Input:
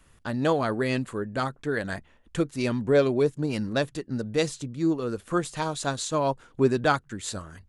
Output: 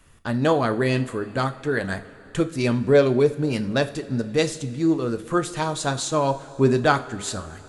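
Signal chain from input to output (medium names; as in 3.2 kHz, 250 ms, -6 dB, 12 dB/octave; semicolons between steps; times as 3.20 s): two-slope reverb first 0.36 s, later 3.8 s, from -18 dB, DRR 8.5 dB; trim +3.5 dB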